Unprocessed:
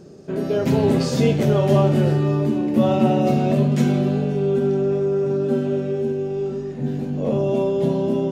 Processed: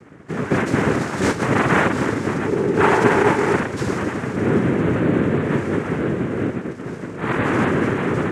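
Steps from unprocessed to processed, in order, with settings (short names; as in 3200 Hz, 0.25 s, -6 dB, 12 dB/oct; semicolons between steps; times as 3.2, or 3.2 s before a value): mistuned SSB -85 Hz 290–3500 Hz; noise vocoder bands 3; 2.46–3.57 small resonant body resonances 410/870 Hz, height 10 dB; gain +2.5 dB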